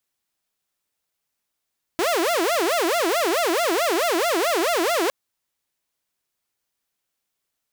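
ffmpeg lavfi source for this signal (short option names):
-f lavfi -i "aevalsrc='0.15*(2*mod((513*t-189/(2*PI*4.6)*sin(2*PI*4.6*t)),1)-1)':d=3.11:s=44100"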